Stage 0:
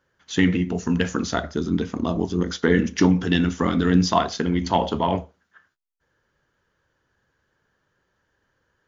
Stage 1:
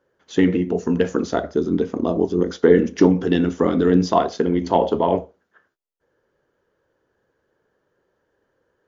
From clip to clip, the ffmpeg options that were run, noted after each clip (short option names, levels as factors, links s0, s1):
-af "equalizer=f=450:w=0.71:g=14.5,volume=0.501"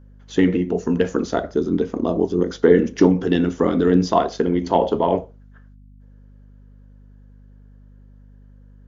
-af "aeval=exprs='val(0)+0.00562*(sin(2*PI*50*n/s)+sin(2*PI*2*50*n/s)/2+sin(2*PI*3*50*n/s)/3+sin(2*PI*4*50*n/s)/4+sin(2*PI*5*50*n/s)/5)':c=same"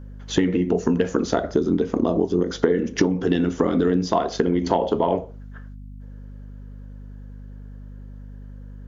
-af "acompressor=threshold=0.0631:ratio=10,volume=2.51"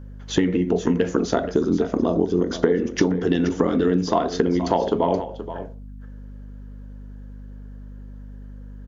-af "aecho=1:1:476:0.251"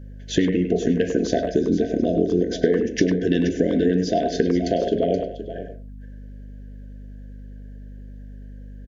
-filter_complex "[0:a]afftfilt=real='re*(1-between(b*sr/4096,730,1500))':imag='im*(1-between(b*sr/4096,730,1500))':win_size=4096:overlap=0.75,asplit=2[s0][s1];[s1]adelay=100,highpass=300,lowpass=3400,asoftclip=type=hard:threshold=0.237,volume=0.447[s2];[s0][s2]amix=inputs=2:normalize=0"